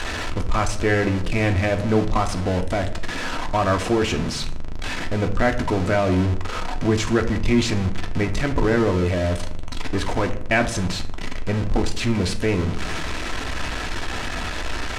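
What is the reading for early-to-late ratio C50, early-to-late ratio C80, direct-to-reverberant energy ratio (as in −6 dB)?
12.5 dB, 16.5 dB, 4.5 dB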